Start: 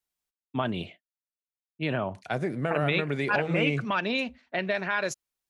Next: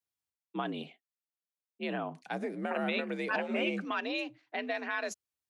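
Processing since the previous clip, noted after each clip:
frequency shifter +61 Hz
level −6.5 dB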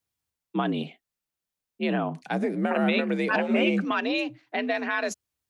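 low-shelf EQ 210 Hz +10 dB
level +6.5 dB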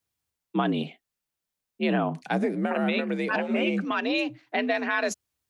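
speech leveller within 3 dB 0.5 s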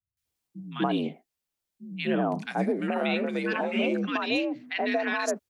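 three-band delay without the direct sound lows, highs, mids 170/250 ms, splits 150/1,400 Hz

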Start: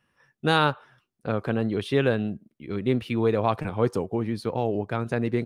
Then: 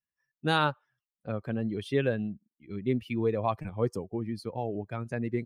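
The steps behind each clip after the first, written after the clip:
spectral dynamics exaggerated over time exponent 1.5
level −3 dB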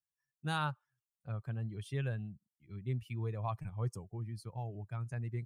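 octave-band graphic EQ 125/250/500/2,000/4,000/8,000 Hz +7/−12/−10/−5/−6/+5 dB
level −5 dB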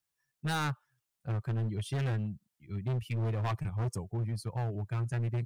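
hard clipping −37.5 dBFS, distortion −9 dB
level +8.5 dB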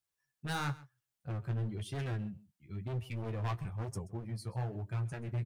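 flanger 1 Hz, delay 9.7 ms, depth 7.4 ms, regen −33%
single-tap delay 131 ms −19.5 dB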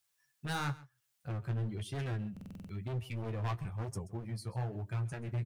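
buffer that repeats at 0:02.32, samples 2,048, times 7
one half of a high-frequency compander encoder only

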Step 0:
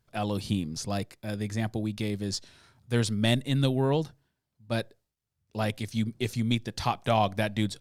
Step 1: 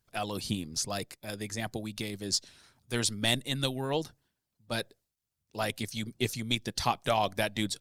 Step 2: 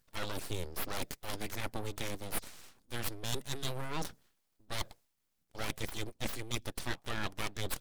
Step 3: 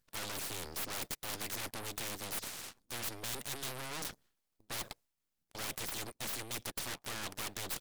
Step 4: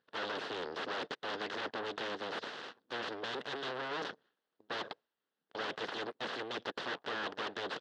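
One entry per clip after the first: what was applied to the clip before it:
high-shelf EQ 3,900 Hz +7.5 dB; harmonic and percussive parts rebalanced harmonic −10 dB
reversed playback; downward compressor 6 to 1, threshold −39 dBFS, peak gain reduction 16.5 dB; reversed playback; full-wave rectification; level +7 dB
leveller curve on the samples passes 3; every bin compressed towards the loudest bin 2 to 1; level −7.5 dB
loudspeaker in its box 270–3,600 Hz, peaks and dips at 450 Hz +6 dB, 1,600 Hz +4 dB, 2,300 Hz −10 dB; level +5.5 dB

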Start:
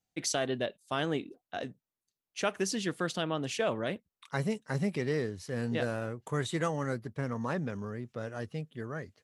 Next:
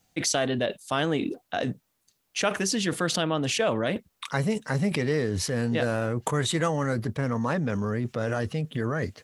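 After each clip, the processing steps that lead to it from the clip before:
notch filter 380 Hz, Q 12
in parallel at +2.5 dB: compressor whose output falls as the input rises −44 dBFS, ratio −1
on the sum: level +4.5 dB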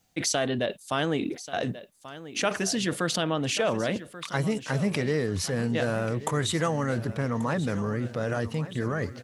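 repeating echo 1,135 ms, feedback 48%, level −15 dB
level −1 dB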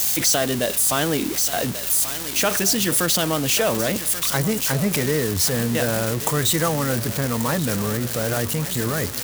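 spike at every zero crossing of −19 dBFS
hum with harmonics 60 Hz, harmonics 34, −47 dBFS −3 dB per octave
level +4.5 dB

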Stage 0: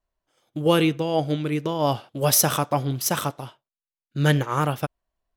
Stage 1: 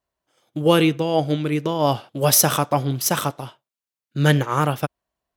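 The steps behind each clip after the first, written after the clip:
high-pass filter 80 Hz
level +3 dB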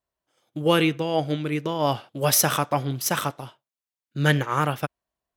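dynamic equaliser 1,900 Hz, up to +5 dB, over −34 dBFS, Q 0.95
level −4.5 dB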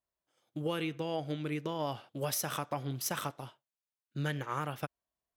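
downward compressor, threshold −24 dBFS, peak gain reduction 10 dB
level −7 dB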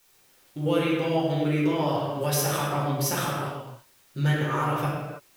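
background noise white −68 dBFS
convolution reverb, pre-delay 6 ms, DRR −6.5 dB
level +2.5 dB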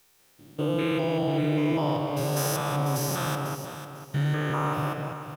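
spectrum averaged block by block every 200 ms
repeating echo 496 ms, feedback 27%, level −10.5 dB

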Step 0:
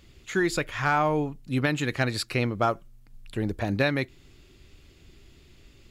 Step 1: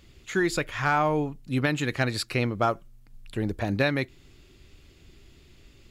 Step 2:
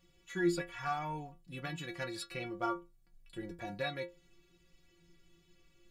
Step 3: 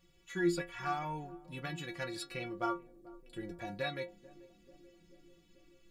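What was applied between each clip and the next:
no processing that can be heard
stiff-string resonator 170 Hz, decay 0.27 s, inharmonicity 0.008
feedback echo with a band-pass in the loop 437 ms, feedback 77%, band-pass 310 Hz, level −18 dB

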